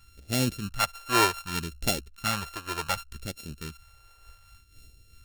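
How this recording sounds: a buzz of ramps at a fixed pitch in blocks of 32 samples; phasing stages 2, 0.66 Hz, lowest notch 190–1100 Hz; noise-modulated level

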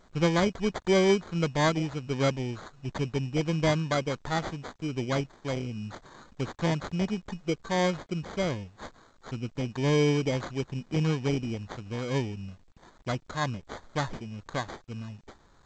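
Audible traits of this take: a quantiser's noise floor 10-bit, dither none; tremolo triangle 1.4 Hz, depth 30%; aliases and images of a low sample rate 2700 Hz, jitter 0%; G.722

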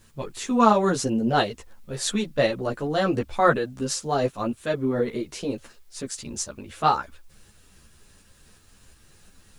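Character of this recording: tremolo saw up 2.8 Hz, depth 35%; a quantiser's noise floor 12-bit, dither triangular; a shimmering, thickened sound

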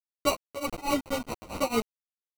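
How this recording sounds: a quantiser's noise floor 6-bit, dither none; tremolo triangle 4.6 Hz, depth 100%; aliases and images of a low sample rate 1700 Hz, jitter 0%; a shimmering, thickened sound

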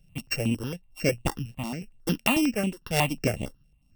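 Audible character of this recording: a buzz of ramps at a fixed pitch in blocks of 16 samples; tremolo triangle 1 Hz, depth 70%; notches that jump at a steady rate 11 Hz 290–5200 Hz

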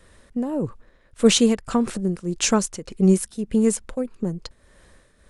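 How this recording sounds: tremolo triangle 1.7 Hz, depth 70%

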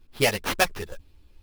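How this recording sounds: aliases and images of a low sample rate 7600 Hz, jitter 20%; a shimmering, thickened sound

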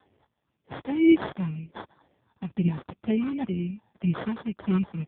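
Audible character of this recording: phasing stages 8, 2 Hz, lowest notch 380–1400 Hz; aliases and images of a low sample rate 2600 Hz, jitter 0%; AMR-NB

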